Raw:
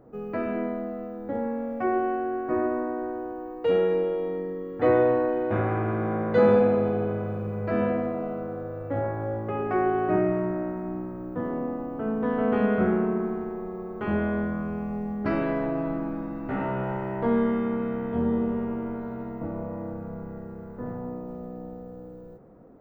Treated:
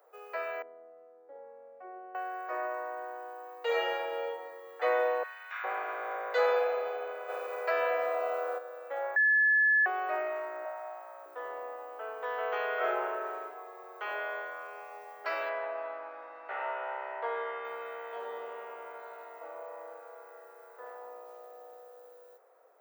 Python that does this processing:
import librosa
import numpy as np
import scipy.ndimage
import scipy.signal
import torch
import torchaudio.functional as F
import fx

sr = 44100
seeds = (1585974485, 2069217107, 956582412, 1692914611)

y = fx.bandpass_q(x, sr, hz=250.0, q=1.8, at=(0.62, 2.15))
y = fx.reverb_throw(y, sr, start_s=3.63, length_s=0.61, rt60_s=1.3, drr_db=-3.0)
y = fx.cheby2_highpass(y, sr, hz=280.0, order=4, stop_db=70, at=(5.23, 5.64))
y = fx.env_flatten(y, sr, amount_pct=50, at=(7.28, 8.57), fade=0.02)
y = fx.low_shelf_res(y, sr, hz=510.0, db=-7.0, q=3.0, at=(10.65, 11.26))
y = fx.reverb_throw(y, sr, start_s=12.76, length_s=0.66, rt60_s=0.98, drr_db=-2.5)
y = fx.bandpass_edges(y, sr, low_hz=250.0, high_hz=2900.0, at=(15.49, 17.65))
y = fx.edit(y, sr, fx.bleep(start_s=9.16, length_s=0.7, hz=1720.0, db=-21.5), tone=tone)
y = scipy.signal.sosfilt(scipy.signal.butter(6, 480.0, 'highpass', fs=sr, output='sos'), y)
y = fx.tilt_eq(y, sr, slope=3.5)
y = y * 10.0 ** (-2.5 / 20.0)